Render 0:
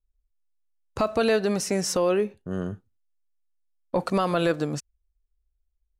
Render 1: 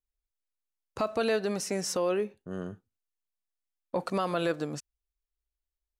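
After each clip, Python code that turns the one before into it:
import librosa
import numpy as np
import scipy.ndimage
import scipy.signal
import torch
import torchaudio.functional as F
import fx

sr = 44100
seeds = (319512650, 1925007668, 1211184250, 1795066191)

y = fx.low_shelf(x, sr, hz=93.0, db=-12.0)
y = y * librosa.db_to_amplitude(-5.0)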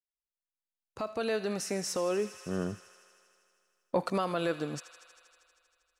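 y = fx.fade_in_head(x, sr, length_s=1.95)
y = fx.echo_wet_highpass(y, sr, ms=79, feedback_pct=81, hz=1500.0, wet_db=-13.0)
y = fx.rider(y, sr, range_db=4, speed_s=0.5)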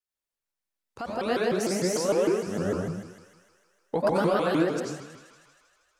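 y = fx.rev_plate(x, sr, seeds[0], rt60_s=0.92, hf_ratio=0.45, predelay_ms=75, drr_db=-4.5)
y = fx.vibrato_shape(y, sr, shape='saw_up', rate_hz=6.6, depth_cents=250.0)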